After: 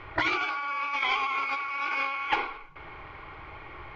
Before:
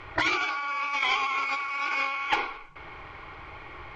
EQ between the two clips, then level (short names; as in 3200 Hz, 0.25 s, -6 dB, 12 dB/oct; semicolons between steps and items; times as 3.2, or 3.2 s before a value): air absorption 130 m; 0.0 dB